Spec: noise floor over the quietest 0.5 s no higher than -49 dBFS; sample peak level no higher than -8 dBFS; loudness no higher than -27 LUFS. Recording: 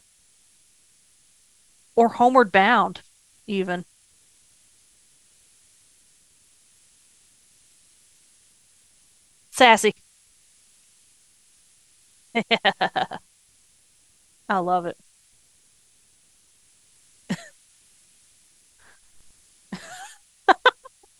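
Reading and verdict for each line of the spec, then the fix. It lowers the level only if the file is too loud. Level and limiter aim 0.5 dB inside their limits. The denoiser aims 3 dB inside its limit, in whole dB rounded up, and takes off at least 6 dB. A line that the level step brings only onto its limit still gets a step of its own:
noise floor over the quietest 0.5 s -59 dBFS: OK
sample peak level -2.0 dBFS: fail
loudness -21.0 LUFS: fail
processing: gain -6.5 dB

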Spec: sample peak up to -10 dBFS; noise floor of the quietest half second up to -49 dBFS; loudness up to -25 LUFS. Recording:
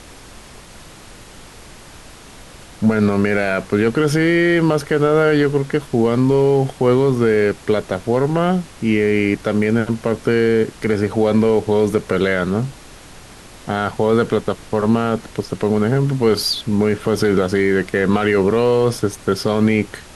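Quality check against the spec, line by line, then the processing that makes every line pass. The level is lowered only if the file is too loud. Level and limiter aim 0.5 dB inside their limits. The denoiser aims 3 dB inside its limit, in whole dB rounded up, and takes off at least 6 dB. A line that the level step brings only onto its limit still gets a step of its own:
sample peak -5.0 dBFS: fail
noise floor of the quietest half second -40 dBFS: fail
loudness -17.5 LUFS: fail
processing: denoiser 6 dB, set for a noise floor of -40 dBFS; gain -8 dB

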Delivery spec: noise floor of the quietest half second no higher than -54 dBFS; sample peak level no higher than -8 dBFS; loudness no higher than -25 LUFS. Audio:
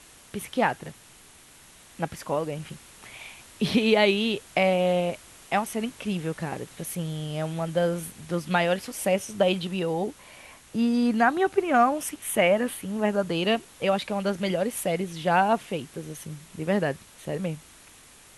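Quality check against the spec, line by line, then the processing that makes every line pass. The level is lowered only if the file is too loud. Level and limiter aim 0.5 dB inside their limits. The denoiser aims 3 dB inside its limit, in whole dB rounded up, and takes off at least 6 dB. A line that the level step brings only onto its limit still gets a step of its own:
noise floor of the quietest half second -52 dBFS: fail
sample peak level -8.5 dBFS: OK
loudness -26.0 LUFS: OK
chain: denoiser 6 dB, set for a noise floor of -52 dBFS

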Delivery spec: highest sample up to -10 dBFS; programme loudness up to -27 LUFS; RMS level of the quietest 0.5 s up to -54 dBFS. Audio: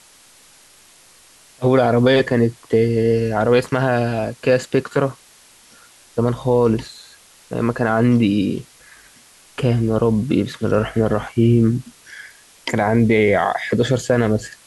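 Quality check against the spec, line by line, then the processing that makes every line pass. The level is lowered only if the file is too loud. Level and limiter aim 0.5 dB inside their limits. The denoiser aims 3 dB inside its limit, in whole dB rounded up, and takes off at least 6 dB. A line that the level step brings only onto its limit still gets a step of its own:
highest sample -5.0 dBFS: fail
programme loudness -18.0 LUFS: fail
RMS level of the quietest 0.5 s -49 dBFS: fail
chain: gain -9.5 dB

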